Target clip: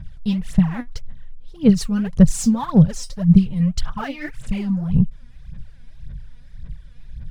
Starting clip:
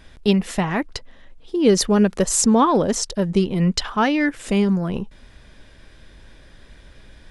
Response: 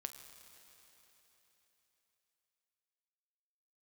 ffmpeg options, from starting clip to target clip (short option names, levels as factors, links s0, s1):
-af "aphaser=in_gain=1:out_gain=1:delay=4.2:decay=0.79:speed=1.8:type=sinusoidal,lowshelf=f=220:t=q:w=3:g=13.5,volume=0.224"